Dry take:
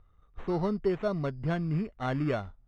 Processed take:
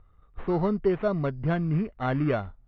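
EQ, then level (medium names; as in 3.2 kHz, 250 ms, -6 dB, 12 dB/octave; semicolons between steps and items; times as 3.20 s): low-pass 3.1 kHz 12 dB/octave; +4.0 dB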